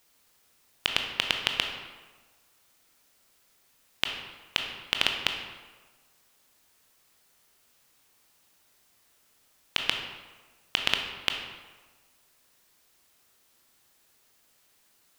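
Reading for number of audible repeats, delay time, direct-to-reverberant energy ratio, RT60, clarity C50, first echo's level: no echo, no echo, 3.0 dB, 1.4 s, 5.0 dB, no echo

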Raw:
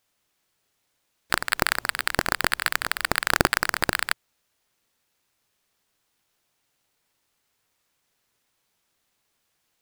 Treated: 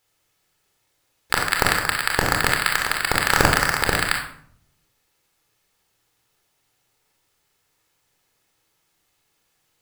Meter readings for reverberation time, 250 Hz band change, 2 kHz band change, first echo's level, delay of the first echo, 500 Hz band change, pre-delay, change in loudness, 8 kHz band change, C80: 0.60 s, +4.5 dB, +4.0 dB, no echo, no echo, +5.0 dB, 27 ms, +4.5 dB, +4.5 dB, 9.0 dB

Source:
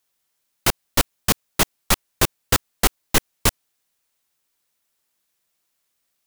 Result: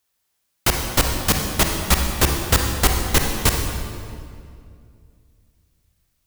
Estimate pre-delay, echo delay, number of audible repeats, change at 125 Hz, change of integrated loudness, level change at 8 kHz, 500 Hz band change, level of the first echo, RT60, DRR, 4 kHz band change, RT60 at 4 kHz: 37 ms, no echo, no echo, +6.5 dB, +2.0 dB, +1.5 dB, +2.0 dB, no echo, 2.3 s, 2.5 dB, +1.5 dB, 1.7 s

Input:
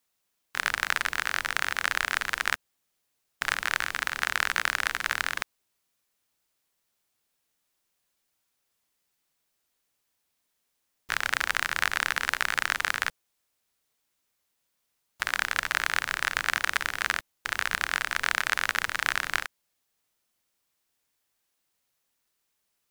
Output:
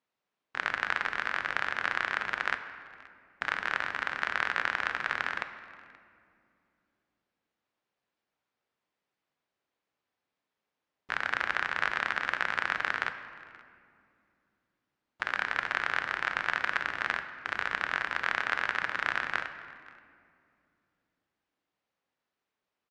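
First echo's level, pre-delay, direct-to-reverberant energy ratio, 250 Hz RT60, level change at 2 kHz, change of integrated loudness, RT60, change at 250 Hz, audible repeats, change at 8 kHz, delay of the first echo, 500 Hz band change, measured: -23.5 dB, 4 ms, 8.5 dB, 3.7 s, -2.5 dB, -3.5 dB, 2.5 s, 0.0 dB, 1, -18.5 dB, 528 ms, +0.5 dB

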